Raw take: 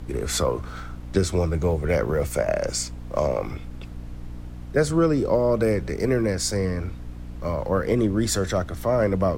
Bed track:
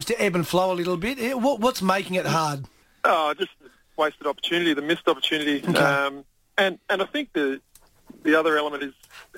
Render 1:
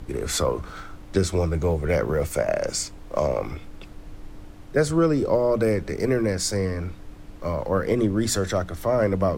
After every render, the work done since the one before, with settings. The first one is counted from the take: hum notches 60/120/180/240 Hz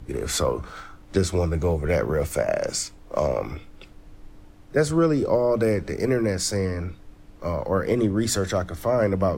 noise print and reduce 6 dB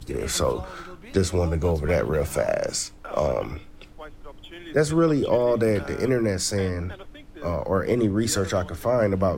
add bed track -19 dB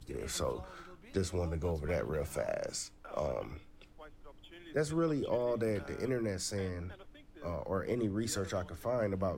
trim -12 dB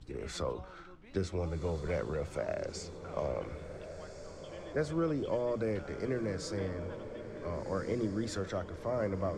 distance through air 84 m; echo that smears into a reverb 1486 ms, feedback 52%, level -10 dB

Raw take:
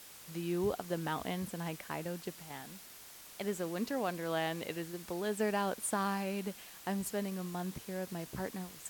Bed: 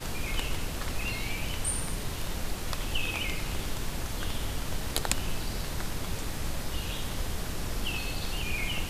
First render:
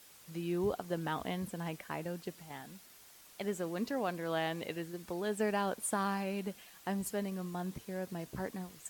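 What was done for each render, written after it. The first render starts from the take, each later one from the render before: noise reduction 6 dB, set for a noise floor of -53 dBFS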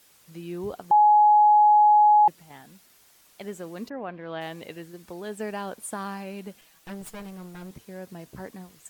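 0.91–2.28 s: bleep 840 Hz -13 dBFS; 3.88–4.40 s: low-pass 1.9 kHz -> 4.4 kHz 24 dB/octave; 6.61–7.71 s: comb filter that takes the minimum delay 6.2 ms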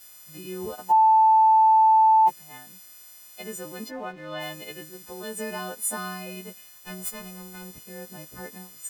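partials quantised in pitch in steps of 3 st; crossover distortion -54.5 dBFS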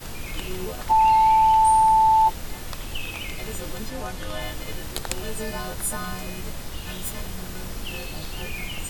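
add bed -1 dB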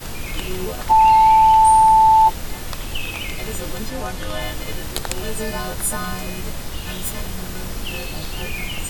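trim +5 dB; peak limiter -2 dBFS, peak gain reduction 2.5 dB

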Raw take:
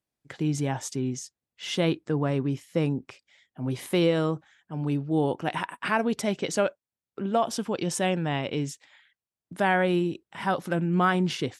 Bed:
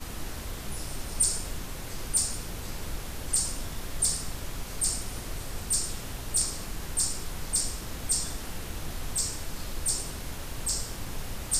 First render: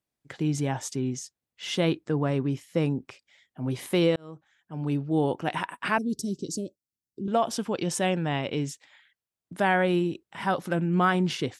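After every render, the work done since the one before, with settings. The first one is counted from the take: 4.16–4.95 s: fade in; 5.98–7.28 s: Chebyshev band-stop 350–4800 Hz, order 3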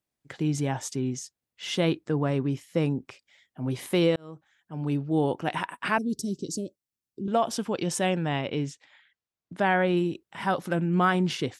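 8.41–9.97 s: distance through air 68 m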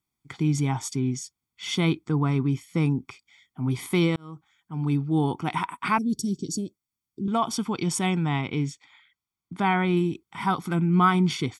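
comb 0.9 ms, depth 85%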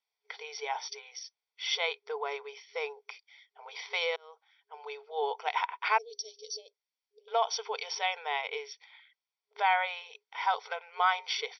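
FFT band-pass 410–5900 Hz; peaking EQ 1.2 kHz -12.5 dB 0.25 oct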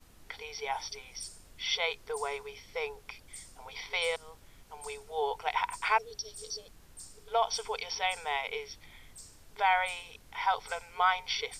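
add bed -21 dB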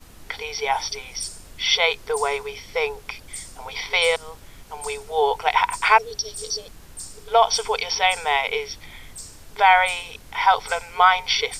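trim +12 dB; peak limiter -3 dBFS, peak gain reduction 2 dB

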